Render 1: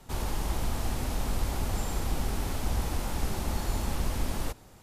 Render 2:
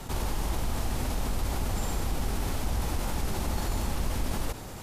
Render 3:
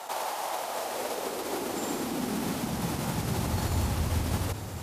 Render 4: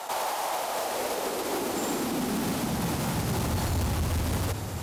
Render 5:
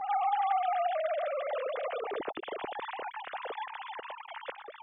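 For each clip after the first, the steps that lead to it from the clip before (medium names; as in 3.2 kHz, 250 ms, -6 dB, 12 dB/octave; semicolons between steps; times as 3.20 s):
level flattener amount 50%; trim -2 dB
high-pass sweep 690 Hz -> 88 Hz, 0.53–3.78 s; trim +1.5 dB
hard clipper -27.5 dBFS, distortion -12 dB; trim +3.5 dB
formants replaced by sine waves; trim -5 dB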